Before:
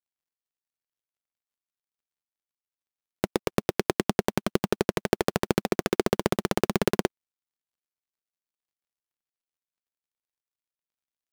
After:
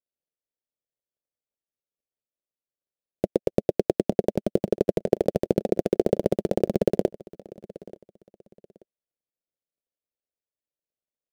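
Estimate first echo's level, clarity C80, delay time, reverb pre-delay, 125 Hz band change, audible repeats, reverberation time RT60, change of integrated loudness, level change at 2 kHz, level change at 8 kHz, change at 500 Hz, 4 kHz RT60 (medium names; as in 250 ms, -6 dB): -20.5 dB, no reverb, 883 ms, no reverb, +0.5 dB, 2, no reverb, +2.5 dB, -13.5 dB, under -10 dB, +5.0 dB, no reverb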